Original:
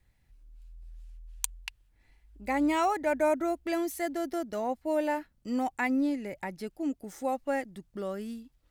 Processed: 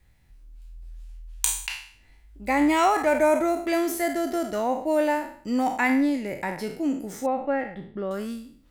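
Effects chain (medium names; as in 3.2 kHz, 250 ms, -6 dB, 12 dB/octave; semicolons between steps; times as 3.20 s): spectral sustain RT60 0.53 s; 7.26–8.11 s: distance through air 400 m; trim +5.5 dB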